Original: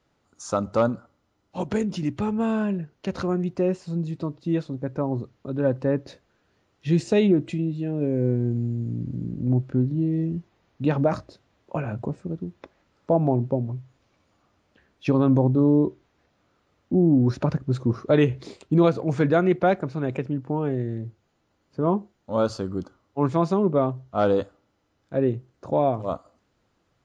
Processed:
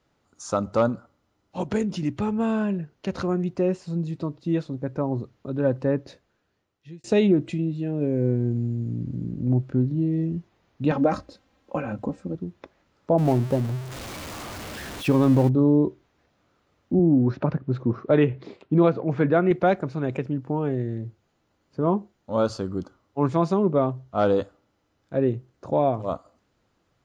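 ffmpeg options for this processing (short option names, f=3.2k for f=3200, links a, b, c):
-filter_complex "[0:a]asettb=1/sr,asplit=3[a][b][c];[a]atrim=end=10.914[d];[b]atrim=start=10.91:end=12.35,asetpts=PTS-STARTPTS,afade=t=in:d=0.004:c=qsin,afade=t=out:st=1.436:d=0.004:c=qsin,aecho=1:1:3.8:0.65,atrim=end_sample=63504[e];[c]atrim=start=12.346[f];[d][e]acrossfade=d=0.004:c1=hsin:c2=qsin[g];[g][f]acrossfade=d=0.004:c1=qsin:c2=hsin,asettb=1/sr,asplit=3[h][i][j];[h]atrim=end=13.184[k];[i]atrim=start=13.18:end=15.49,asetpts=PTS-STARTPTS,afade=t=in:d=0.004:c=qsin,afade=t=out:st=2.306:d=0.004:c=qsin,aeval=exprs='val(0)+0.5*0.0299*sgn(val(0))':c=same[l];[j]atrim=start=15.486[m];[k][l]acrossfade=d=0.004:c1=hsin:c2=qsin[n];[n][m]acrossfade=d=0.004:c1=qsin:c2=hsin,asettb=1/sr,asplit=3[o][p][q];[o]atrim=end=16.994[r];[p]atrim=start=16.99:end=19.51,asetpts=PTS-STARTPTS,afade=t=in:d=0.004:c=qsin,afade=t=out:st=2.516:d=0.004:c=qsin,highpass=110,lowpass=2.7k[s];[q]atrim=start=19.506[t];[r][s]acrossfade=d=0.004:c1=hsin:c2=qsin[u];[u][t]acrossfade=d=0.004:c1=qsin:c2=hsin,asplit=2[v][w];[v]atrim=end=7.04,asetpts=PTS-STARTPTS,afade=t=out:st=5.9:d=1.14[x];[w]atrim=start=7.04,asetpts=PTS-STARTPTS,afade=t=in:d=0.004:c=hsin[y];[x][y]concat=n=2:v=0:a=1"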